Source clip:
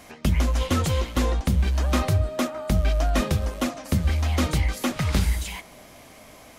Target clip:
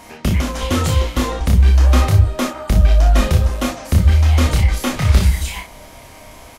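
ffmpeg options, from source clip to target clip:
ffmpeg -i in.wav -filter_complex "[0:a]asubboost=boost=3:cutoff=96,acontrast=52,aeval=exprs='val(0)+0.00794*sin(2*PI*940*n/s)':channel_layout=same,asplit=2[link_01][link_02];[link_02]aecho=0:1:28|38|59:0.668|0.299|0.422[link_03];[link_01][link_03]amix=inputs=2:normalize=0,volume=-1.5dB" out.wav

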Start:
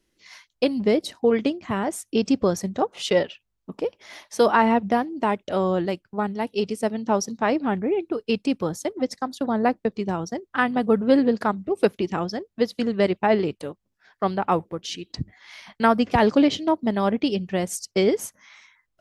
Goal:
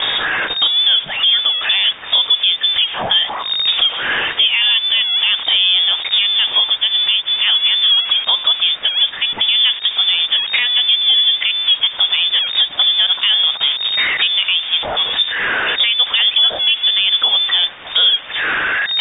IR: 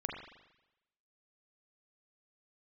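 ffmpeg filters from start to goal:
-af "aeval=exprs='val(0)+0.5*0.0398*sgn(val(0))':channel_layout=same,acompressor=threshold=-33dB:ratio=3,lowpass=frequency=3100:width_type=q:width=0.5098,lowpass=frequency=3100:width_type=q:width=0.6013,lowpass=frequency=3100:width_type=q:width=0.9,lowpass=frequency=3100:width_type=q:width=2.563,afreqshift=-3700,bandreject=frequency=176.3:width_type=h:width=4,bandreject=frequency=352.6:width_type=h:width=4,bandreject=frequency=528.9:width_type=h:width=4,bandreject=frequency=705.2:width_type=h:width=4,bandreject=frequency=881.5:width_type=h:width=4,bandreject=frequency=1057.8:width_type=h:width=4,bandreject=frequency=1234.1:width_type=h:width=4,bandreject=frequency=1410.4:width_type=h:width=4,bandreject=frequency=1586.7:width_type=h:width=4,bandreject=frequency=1763:width_type=h:width=4,bandreject=frequency=1939.3:width_type=h:width=4,alimiter=level_in=22dB:limit=-1dB:release=50:level=0:latency=1,volume=-3.5dB"

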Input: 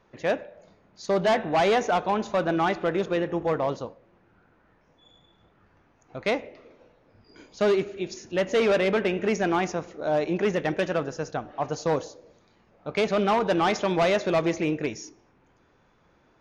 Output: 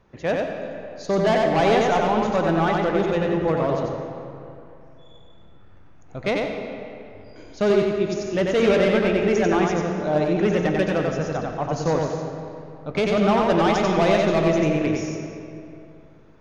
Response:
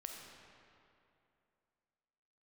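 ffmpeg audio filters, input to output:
-filter_complex "[0:a]lowshelf=frequency=180:gain=10.5,asplit=2[link_01][link_02];[1:a]atrim=start_sample=2205,adelay=92[link_03];[link_02][link_03]afir=irnorm=-1:irlink=0,volume=2.5dB[link_04];[link_01][link_04]amix=inputs=2:normalize=0"

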